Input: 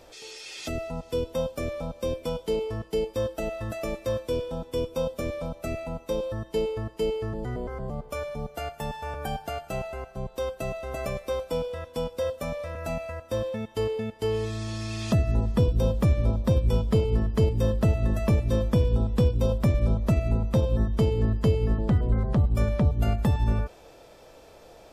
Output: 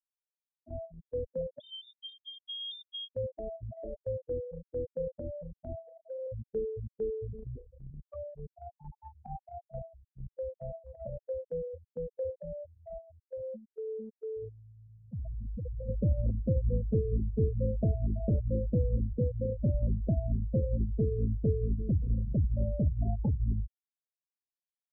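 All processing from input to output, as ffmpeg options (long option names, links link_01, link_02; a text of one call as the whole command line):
ffmpeg -i in.wav -filter_complex "[0:a]asettb=1/sr,asplit=3[link_01][link_02][link_03];[link_01]atrim=end=1.604[link_04];[link_02]atrim=start=1.6:end=3.13,asetpts=PTS-STARTPTS,afade=type=in:duration=0.004:curve=qsin,afade=type=out:start_time=1.526:duration=0.004:curve=qsin,acompressor=threshold=-29dB:ratio=10:attack=3.2:release=140:knee=1:detection=peak,lowpass=frequency=3100:width_type=q:width=0.5098,lowpass=frequency=3100:width_type=q:width=0.6013,lowpass=frequency=3100:width_type=q:width=0.9,lowpass=frequency=3100:width_type=q:width=2.563,afreqshift=-3700[link_05];[link_03]atrim=start=3.126[link_06];[link_04][link_05]acrossfade=duration=0.004:curve1=hsin:curve2=qsin[link_07];[link_07][link_06]acrossfade=duration=0.004:curve1=qsin:curve2=hsin,asettb=1/sr,asplit=3[link_08][link_09][link_10];[link_08]atrim=end=5.874[link_11];[link_09]atrim=start=5.87:end=6.27,asetpts=PTS-STARTPTS,afade=type=in:duration=0.004:curve=qsin,afade=type=out:start_time=0.396:duration=0.004:curve=qsin,acompressor=threshold=-41dB:ratio=10:attack=3.2:release=140:knee=1:detection=peak,asplit=2[link_12][link_13];[link_13]highpass=frequency=720:poles=1,volume=32dB,asoftclip=type=tanh:threshold=-24dB[link_14];[link_12][link_14]amix=inputs=2:normalize=0,lowpass=frequency=3300:poles=1,volume=-6dB[link_15];[link_10]atrim=start=6.266[link_16];[link_11][link_15]acrossfade=duration=0.004:curve1=hsin:curve2=qsin[link_17];[link_17][link_16]acrossfade=duration=0.004:curve1=qsin:curve2=hsin,asettb=1/sr,asplit=3[link_18][link_19][link_20];[link_18]atrim=end=12.634[link_21];[link_19]atrim=start=12.63:end=15.89,asetpts=PTS-STARTPTS,afade=type=in:duration=0.004:curve=qsin,afade=type=out:start_time=3.256:duration=0.004:curve=qsin,equalizer=frequency=130:width_type=o:width=1.4:gain=-3,asoftclip=type=hard:threshold=-28dB[link_22];[link_20]atrim=start=15.886[link_23];[link_21][link_22]acrossfade=duration=0.004:curve1=hsin:curve2=qsin[link_24];[link_24][link_23]acrossfade=duration=0.004:curve1=qsin:curve2=hsin,asettb=1/sr,asplit=3[link_25][link_26][link_27];[link_25]atrim=end=19.134[link_28];[link_26]atrim=start=19.13:end=19.59,asetpts=PTS-STARTPTS,afade=type=in:duration=0.004:curve=qsin,afade=type=out:start_time=0.456:duration=0.004:curve=qsin,highpass=79,bandreject=frequency=190:width=5.2[link_29];[link_27]atrim=start=19.586[link_30];[link_28][link_29]acrossfade=duration=0.004:curve1=hsin:curve2=qsin[link_31];[link_31][link_30]acrossfade=duration=0.004:curve1=qsin:curve2=hsin,afftfilt=real='re*gte(hypot(re,im),0.141)':imag='im*gte(hypot(re,im),0.141)':win_size=1024:overlap=0.75,agate=range=-9dB:threshold=-36dB:ratio=16:detection=peak,equalizer=frequency=1200:width_type=o:width=0.28:gain=-6,volume=-6dB" out.wav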